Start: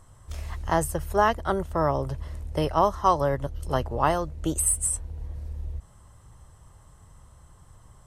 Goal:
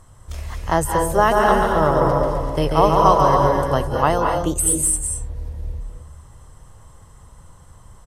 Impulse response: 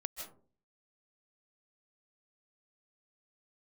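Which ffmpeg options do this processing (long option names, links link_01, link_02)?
-filter_complex "[0:a]asplit=3[link_01][link_02][link_03];[link_01]afade=type=out:start_time=1.3:duration=0.02[link_04];[link_02]aecho=1:1:140|266|379.4|481.5|573.3:0.631|0.398|0.251|0.158|0.1,afade=type=in:start_time=1.3:duration=0.02,afade=type=out:start_time=3.64:duration=0.02[link_05];[link_03]afade=type=in:start_time=3.64:duration=0.02[link_06];[link_04][link_05][link_06]amix=inputs=3:normalize=0[link_07];[1:a]atrim=start_sample=2205,asetrate=33516,aresample=44100[link_08];[link_07][link_08]afir=irnorm=-1:irlink=0,volume=6dB"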